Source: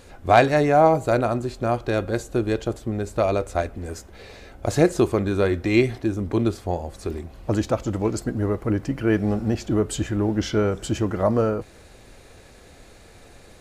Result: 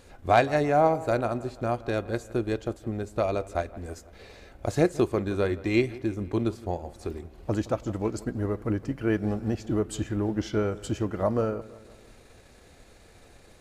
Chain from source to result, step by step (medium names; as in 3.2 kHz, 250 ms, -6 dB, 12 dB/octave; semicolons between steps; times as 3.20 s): transient shaper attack +1 dB, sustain -4 dB; feedback echo behind a low-pass 166 ms, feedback 53%, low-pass 3.2 kHz, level -19 dB; trim -5.5 dB